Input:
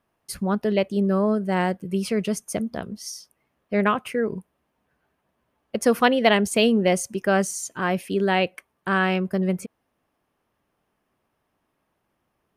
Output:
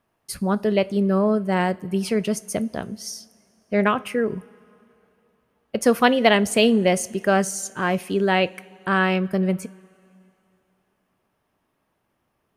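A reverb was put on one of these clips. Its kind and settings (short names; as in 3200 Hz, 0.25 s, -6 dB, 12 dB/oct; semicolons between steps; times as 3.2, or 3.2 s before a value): two-slope reverb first 0.28 s, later 2.8 s, from -18 dB, DRR 14.5 dB; gain +1.5 dB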